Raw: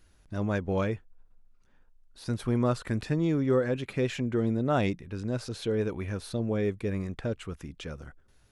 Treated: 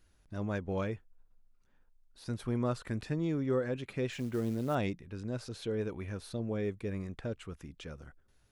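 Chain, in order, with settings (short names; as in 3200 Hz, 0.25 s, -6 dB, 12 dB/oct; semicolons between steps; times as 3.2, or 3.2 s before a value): 4.12–4.75 companded quantiser 6-bit; gain -6 dB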